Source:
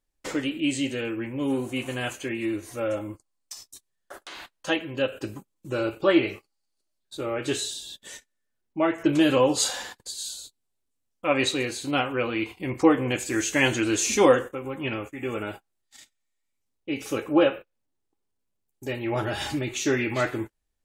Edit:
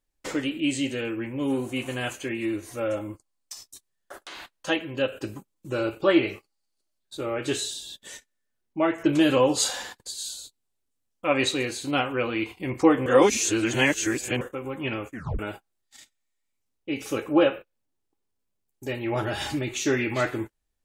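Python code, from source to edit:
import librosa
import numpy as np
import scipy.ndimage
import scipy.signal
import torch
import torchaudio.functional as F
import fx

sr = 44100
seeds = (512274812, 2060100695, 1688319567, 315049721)

y = fx.edit(x, sr, fx.reverse_span(start_s=13.06, length_s=1.35),
    fx.tape_stop(start_s=15.13, length_s=0.26), tone=tone)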